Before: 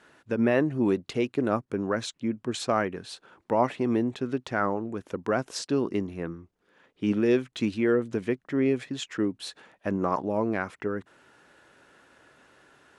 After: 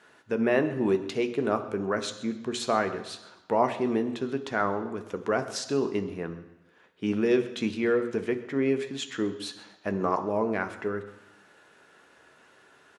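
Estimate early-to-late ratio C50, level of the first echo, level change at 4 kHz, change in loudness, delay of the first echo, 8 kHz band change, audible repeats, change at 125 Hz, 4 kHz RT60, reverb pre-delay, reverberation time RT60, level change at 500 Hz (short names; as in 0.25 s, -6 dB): 11.5 dB, -19.0 dB, +1.0 dB, -0.5 dB, 0.131 s, +1.0 dB, 1, -3.5 dB, 1.0 s, 3 ms, 1.0 s, +0.5 dB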